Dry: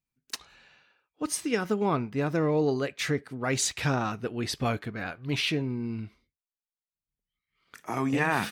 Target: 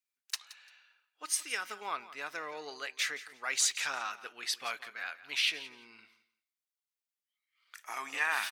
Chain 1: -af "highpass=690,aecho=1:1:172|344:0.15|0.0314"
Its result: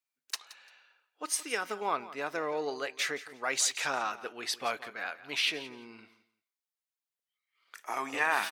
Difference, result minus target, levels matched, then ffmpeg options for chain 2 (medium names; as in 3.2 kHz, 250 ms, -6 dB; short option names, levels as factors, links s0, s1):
500 Hz band +9.5 dB
-af "highpass=1400,aecho=1:1:172|344:0.15|0.0314"